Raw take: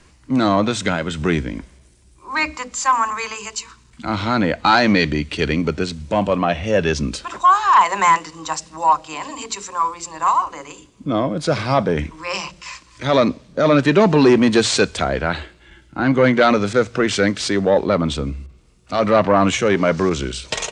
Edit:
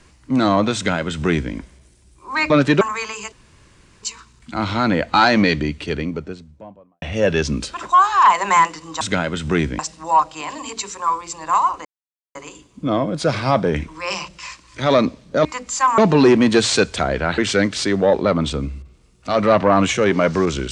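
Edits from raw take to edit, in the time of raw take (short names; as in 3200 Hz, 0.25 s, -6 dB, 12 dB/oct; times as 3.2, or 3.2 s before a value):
0.75–1.53 copy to 8.52
2.5–3.03 swap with 13.68–13.99
3.54 insert room tone 0.71 s
4.79–6.53 studio fade out
10.58 insert silence 0.50 s
15.39–17.02 cut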